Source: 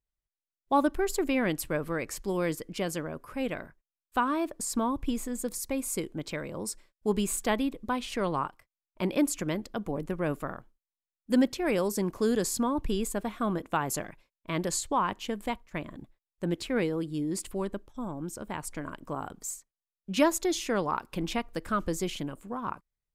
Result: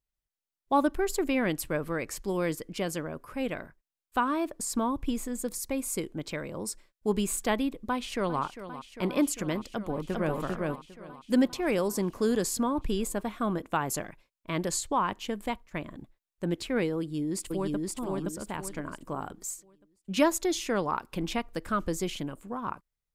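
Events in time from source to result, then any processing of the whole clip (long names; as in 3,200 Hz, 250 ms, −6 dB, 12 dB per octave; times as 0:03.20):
0:07.88–0:08.41: delay throw 400 ms, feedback 85%, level −12.5 dB
0:09.69–0:10.35: delay throw 400 ms, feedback 15%, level −2 dB
0:16.98–0:17.90: delay throw 520 ms, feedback 35%, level −1.5 dB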